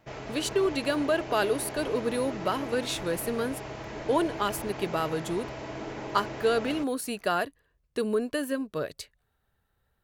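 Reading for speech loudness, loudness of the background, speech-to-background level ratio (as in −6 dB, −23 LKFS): −29.5 LKFS, −38.5 LKFS, 9.0 dB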